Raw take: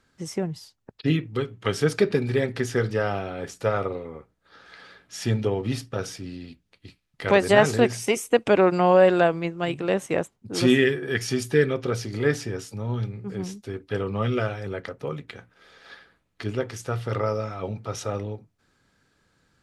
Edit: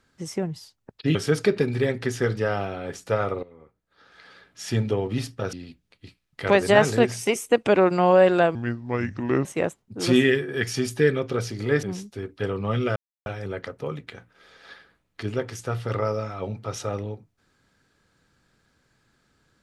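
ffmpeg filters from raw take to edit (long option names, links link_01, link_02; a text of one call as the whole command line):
ffmpeg -i in.wav -filter_complex "[0:a]asplit=8[link_01][link_02][link_03][link_04][link_05][link_06][link_07][link_08];[link_01]atrim=end=1.152[link_09];[link_02]atrim=start=1.688:end=3.97,asetpts=PTS-STARTPTS,afade=type=out:start_time=2.278:duration=0.004:curve=hsin:silence=0.177828[link_10];[link_03]atrim=start=3.97:end=6.072,asetpts=PTS-STARTPTS,afade=type=in:duration=1.28:silence=0.177828[link_11];[link_04]atrim=start=6.338:end=9.364[link_12];[link_05]atrim=start=9.36:end=9.99,asetpts=PTS-STARTPTS,asetrate=30870,aresample=44100[link_13];[link_06]atrim=start=9.986:end=12.372[link_14];[link_07]atrim=start=13.338:end=14.47,asetpts=PTS-STARTPTS,afade=type=out:start_time=1.128:duration=0.004:curve=hsin,apad=pad_dur=0.3[link_15];[link_08]atrim=start=14.47,asetpts=PTS-STARTPTS,afade=type=in:duration=0.004:curve=hsin[link_16];[link_10][link_11]concat=n=2:v=0:a=1[link_17];[link_09][link_17]acrossfade=duration=0.004:curve1=hsin:curve2=hsin[link_18];[link_18][link_12]acrossfade=duration=0.004:curve1=hsin:curve2=hsin[link_19];[link_19][link_13]acrossfade=duration=0.004:curve1=hsin:curve2=hsin[link_20];[link_20][link_14]acrossfade=duration=0.004:curve1=hsin:curve2=hsin[link_21];[link_15][link_16]concat=n=2:v=0:a=1[link_22];[link_21][link_22]acrossfade=duration=0.004:curve1=hsin:curve2=hsin" out.wav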